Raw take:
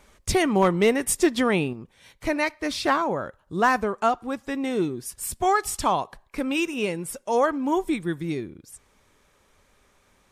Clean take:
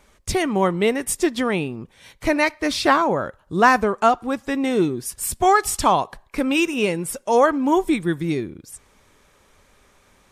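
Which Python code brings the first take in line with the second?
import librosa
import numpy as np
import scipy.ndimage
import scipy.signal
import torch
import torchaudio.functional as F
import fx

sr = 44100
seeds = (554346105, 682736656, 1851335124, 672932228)

y = fx.fix_declip(x, sr, threshold_db=-10.0)
y = fx.fix_level(y, sr, at_s=1.73, step_db=5.5)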